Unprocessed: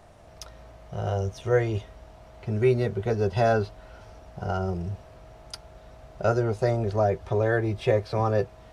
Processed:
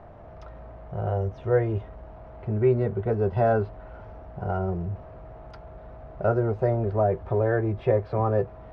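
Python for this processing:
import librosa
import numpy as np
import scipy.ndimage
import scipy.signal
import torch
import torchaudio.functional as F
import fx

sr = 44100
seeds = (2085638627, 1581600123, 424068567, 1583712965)

y = fx.law_mismatch(x, sr, coded='mu')
y = scipy.signal.sosfilt(scipy.signal.butter(2, 1400.0, 'lowpass', fs=sr, output='sos'), y)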